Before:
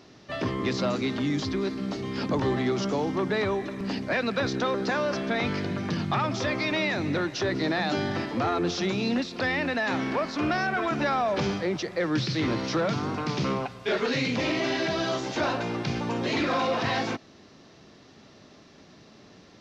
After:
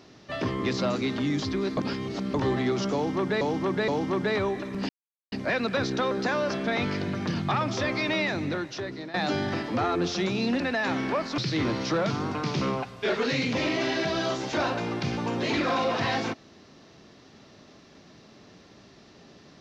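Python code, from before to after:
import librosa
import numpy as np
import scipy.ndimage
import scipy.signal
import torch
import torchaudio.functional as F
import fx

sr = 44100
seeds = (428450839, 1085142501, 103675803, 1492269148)

y = fx.edit(x, sr, fx.reverse_span(start_s=1.77, length_s=0.57),
    fx.repeat(start_s=2.94, length_s=0.47, count=3),
    fx.insert_silence(at_s=3.95, length_s=0.43),
    fx.fade_out_to(start_s=6.87, length_s=0.9, floor_db=-15.5),
    fx.cut(start_s=9.23, length_s=0.4),
    fx.cut(start_s=10.41, length_s=1.8), tone=tone)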